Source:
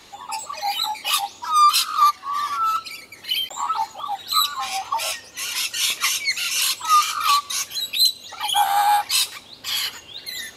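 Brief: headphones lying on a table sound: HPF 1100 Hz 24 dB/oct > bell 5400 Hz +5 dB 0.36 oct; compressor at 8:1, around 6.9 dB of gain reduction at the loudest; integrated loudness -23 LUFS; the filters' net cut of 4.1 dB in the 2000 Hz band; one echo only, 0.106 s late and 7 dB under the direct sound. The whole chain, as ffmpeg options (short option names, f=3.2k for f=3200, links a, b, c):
-af "equalizer=f=2k:t=o:g=-5.5,acompressor=threshold=-20dB:ratio=8,highpass=f=1.1k:w=0.5412,highpass=f=1.1k:w=1.3066,equalizer=f=5.4k:t=o:w=0.36:g=5,aecho=1:1:106:0.447,volume=1dB"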